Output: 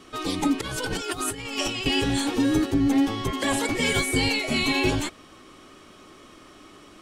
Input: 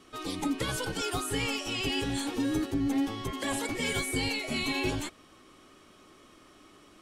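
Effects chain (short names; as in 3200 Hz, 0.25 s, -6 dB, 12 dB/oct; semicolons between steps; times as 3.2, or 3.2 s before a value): 0.61–1.86 negative-ratio compressor -36 dBFS, ratio -0.5; bell 12000 Hz -3.5 dB 0.73 oct; gain +7.5 dB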